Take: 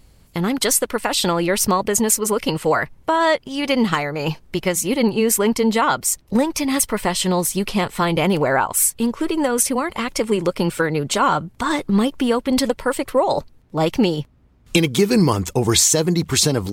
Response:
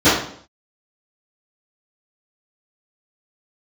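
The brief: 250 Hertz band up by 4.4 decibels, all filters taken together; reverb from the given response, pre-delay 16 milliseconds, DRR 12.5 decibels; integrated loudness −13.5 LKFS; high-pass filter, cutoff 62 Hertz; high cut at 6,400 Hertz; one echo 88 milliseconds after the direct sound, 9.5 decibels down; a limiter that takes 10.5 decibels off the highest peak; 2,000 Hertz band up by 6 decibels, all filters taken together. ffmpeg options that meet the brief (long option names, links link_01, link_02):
-filter_complex "[0:a]highpass=62,lowpass=6400,equalizer=frequency=250:width_type=o:gain=5.5,equalizer=frequency=2000:width_type=o:gain=7.5,alimiter=limit=-10dB:level=0:latency=1,aecho=1:1:88:0.335,asplit=2[link_01][link_02];[1:a]atrim=start_sample=2205,adelay=16[link_03];[link_02][link_03]afir=irnorm=-1:irlink=0,volume=-38.5dB[link_04];[link_01][link_04]amix=inputs=2:normalize=0,volume=5dB"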